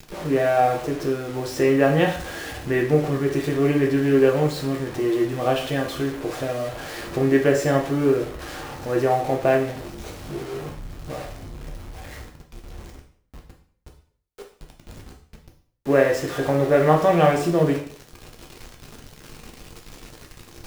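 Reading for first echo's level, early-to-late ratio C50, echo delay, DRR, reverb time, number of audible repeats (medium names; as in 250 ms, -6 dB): no echo, 8.0 dB, no echo, 0.5 dB, 0.55 s, no echo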